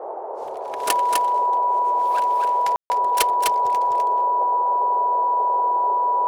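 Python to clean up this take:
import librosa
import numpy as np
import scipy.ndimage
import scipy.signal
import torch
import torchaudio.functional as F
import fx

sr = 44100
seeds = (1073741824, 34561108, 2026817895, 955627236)

y = fx.notch(x, sr, hz=980.0, q=30.0)
y = fx.fix_ambience(y, sr, seeds[0], print_start_s=0.0, print_end_s=0.5, start_s=2.76, end_s=2.9)
y = fx.noise_reduce(y, sr, print_start_s=0.0, print_end_s=0.5, reduce_db=30.0)
y = fx.fix_echo_inverse(y, sr, delay_ms=253, level_db=-3.5)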